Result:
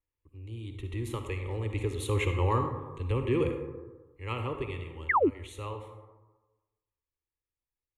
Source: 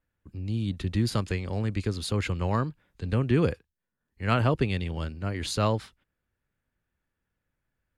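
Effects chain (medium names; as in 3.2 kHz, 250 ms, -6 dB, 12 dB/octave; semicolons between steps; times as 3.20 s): Doppler pass-by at 2.46 s, 5 m/s, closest 3.7 m; band-stop 1.8 kHz, Q 24; on a send at -5 dB: reverberation RT60 1.2 s, pre-delay 43 ms; on the sum: painted sound fall, 5.09–5.30 s, 220–2300 Hz -23 dBFS; static phaser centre 1 kHz, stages 8; trim +2.5 dB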